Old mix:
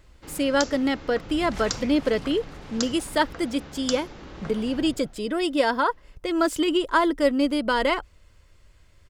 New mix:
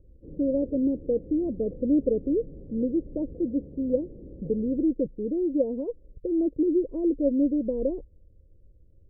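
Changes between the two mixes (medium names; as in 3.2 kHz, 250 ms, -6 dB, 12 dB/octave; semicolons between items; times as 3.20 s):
second sound: muted; master: add Chebyshev low-pass 530 Hz, order 5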